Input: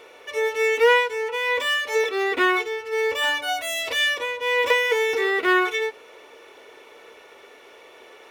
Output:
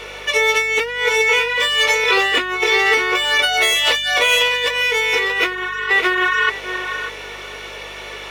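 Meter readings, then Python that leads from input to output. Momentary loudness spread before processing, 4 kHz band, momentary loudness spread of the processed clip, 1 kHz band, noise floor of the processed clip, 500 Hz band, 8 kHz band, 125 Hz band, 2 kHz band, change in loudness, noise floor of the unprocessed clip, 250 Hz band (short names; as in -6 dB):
7 LU, +10.5 dB, 17 LU, +4.5 dB, -33 dBFS, +1.0 dB, +10.5 dB, n/a, +7.5 dB, +6.0 dB, -48 dBFS, +0.5 dB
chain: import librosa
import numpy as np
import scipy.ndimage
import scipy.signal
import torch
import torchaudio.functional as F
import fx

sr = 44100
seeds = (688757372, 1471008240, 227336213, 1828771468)

p1 = fx.peak_eq(x, sr, hz=3700.0, db=8.5, octaves=2.9)
p2 = fx.hum_notches(p1, sr, base_hz=50, count=9)
p3 = fx.doubler(p2, sr, ms=19.0, db=-5.5)
p4 = fx.spec_repair(p3, sr, seeds[0], start_s=5.56, length_s=0.31, low_hz=960.0, high_hz=4200.0, source='before')
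p5 = p4 + fx.echo_feedback(p4, sr, ms=596, feedback_pct=15, wet_db=-7, dry=0)
p6 = fx.over_compress(p5, sr, threshold_db=-22.0, ratio=-1.0)
p7 = fx.add_hum(p6, sr, base_hz=50, snr_db=28)
y = p7 * 10.0 ** (4.0 / 20.0)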